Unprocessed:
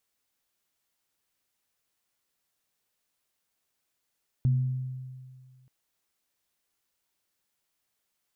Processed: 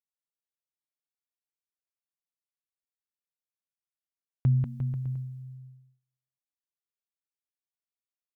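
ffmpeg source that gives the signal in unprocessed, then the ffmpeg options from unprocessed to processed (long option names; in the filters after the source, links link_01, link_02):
-f lavfi -i "aevalsrc='0.112*pow(10,-3*t/1.92)*sin(2*PI*129*t)+0.015*pow(10,-3*t/1.05)*sin(2*PI*236*t)':duration=1.23:sample_rate=44100"
-filter_complex "[0:a]agate=range=-28dB:threshold=-46dB:ratio=16:detection=peak,equalizer=frequency=150:width=1.5:gain=3,asplit=2[link_01][link_02];[link_02]aecho=0:1:190|351.5|488.8|605.5|704.6:0.631|0.398|0.251|0.158|0.1[link_03];[link_01][link_03]amix=inputs=2:normalize=0"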